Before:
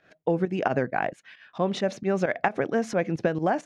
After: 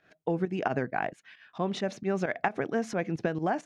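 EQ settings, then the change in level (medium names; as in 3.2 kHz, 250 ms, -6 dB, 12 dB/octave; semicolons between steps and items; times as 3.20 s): peaking EQ 540 Hz -5.5 dB 0.22 oct; -3.5 dB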